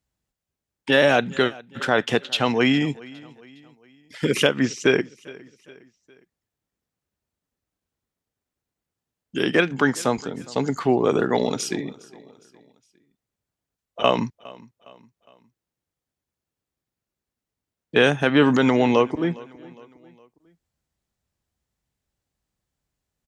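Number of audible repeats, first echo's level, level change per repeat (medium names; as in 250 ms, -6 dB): 2, -22.0 dB, -7.0 dB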